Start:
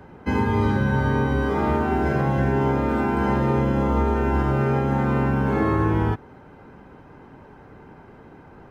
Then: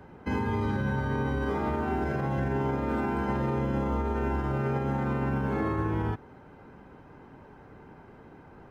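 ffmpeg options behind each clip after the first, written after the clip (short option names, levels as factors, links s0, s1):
-af "alimiter=limit=0.158:level=0:latency=1:release=53,volume=0.596"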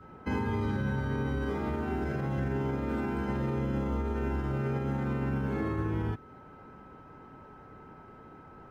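-af "adynamicequalizer=threshold=0.00447:dfrequency=880:dqfactor=0.93:tfrequency=880:tqfactor=0.93:attack=5:release=100:ratio=0.375:range=3:mode=cutabove:tftype=bell,aeval=exprs='val(0)+0.00251*sin(2*PI*1300*n/s)':c=same,volume=0.841"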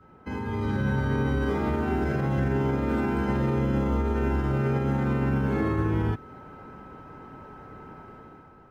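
-af "dynaudnorm=f=140:g=9:m=2.99,volume=0.668"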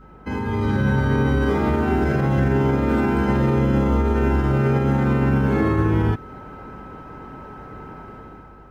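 -af "aeval=exprs='val(0)+0.002*(sin(2*PI*50*n/s)+sin(2*PI*2*50*n/s)/2+sin(2*PI*3*50*n/s)/3+sin(2*PI*4*50*n/s)/4+sin(2*PI*5*50*n/s)/5)':c=same,volume=2.11"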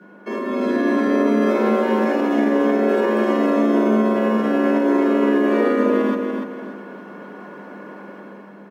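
-af "afreqshift=150,aecho=1:1:290|580|870|1160:0.531|0.175|0.0578|0.0191"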